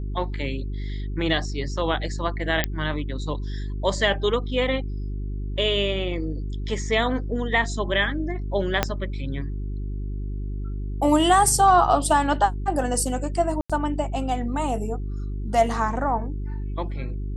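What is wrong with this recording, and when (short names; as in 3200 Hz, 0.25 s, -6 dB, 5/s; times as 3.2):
hum 50 Hz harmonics 8 -29 dBFS
2.64 pop -6 dBFS
8.83 pop -4 dBFS
13.61–13.7 gap 86 ms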